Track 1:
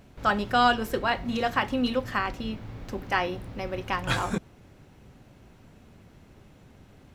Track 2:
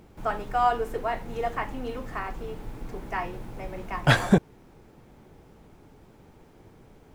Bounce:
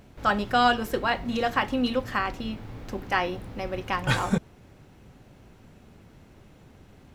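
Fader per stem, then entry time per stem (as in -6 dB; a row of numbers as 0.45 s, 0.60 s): +0.5 dB, -10.0 dB; 0.00 s, 0.00 s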